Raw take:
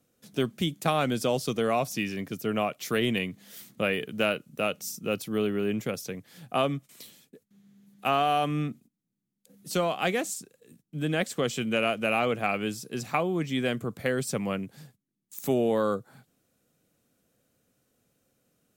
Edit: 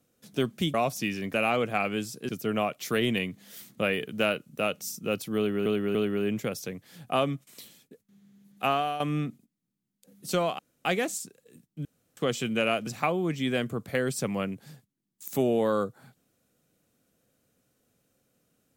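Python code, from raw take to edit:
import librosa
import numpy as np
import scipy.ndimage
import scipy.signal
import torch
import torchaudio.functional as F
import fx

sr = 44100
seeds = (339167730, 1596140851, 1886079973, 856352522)

y = fx.edit(x, sr, fx.cut(start_s=0.74, length_s=0.95),
    fx.repeat(start_s=5.37, length_s=0.29, count=3),
    fx.fade_out_to(start_s=8.09, length_s=0.33, floor_db=-11.0),
    fx.insert_room_tone(at_s=10.01, length_s=0.26),
    fx.room_tone_fill(start_s=11.01, length_s=0.32),
    fx.move(start_s=12.03, length_s=0.95, to_s=2.29), tone=tone)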